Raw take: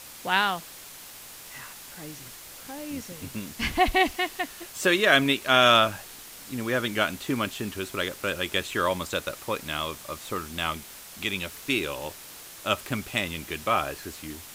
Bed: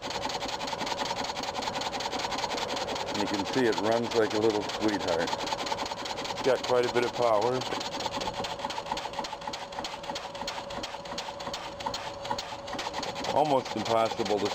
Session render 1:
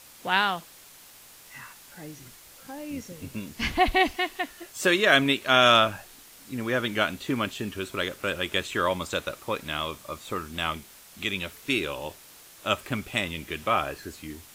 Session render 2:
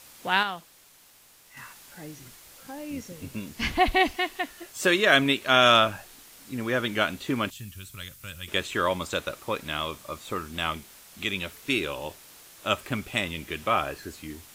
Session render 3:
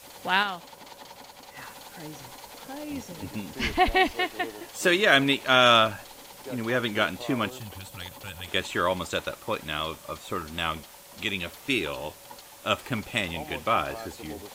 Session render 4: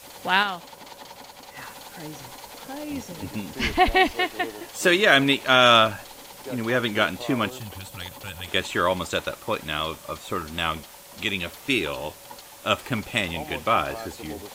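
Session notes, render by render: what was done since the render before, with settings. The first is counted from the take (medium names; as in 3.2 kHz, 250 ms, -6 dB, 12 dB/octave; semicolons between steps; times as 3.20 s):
noise print and reduce 6 dB
0.43–1.57 s: gain -5.5 dB; 7.50–8.48 s: FFT filter 120 Hz 0 dB, 380 Hz -24 dB, 14 kHz +3 dB
add bed -14.5 dB
trim +3 dB; peak limiter -3 dBFS, peak gain reduction 1.5 dB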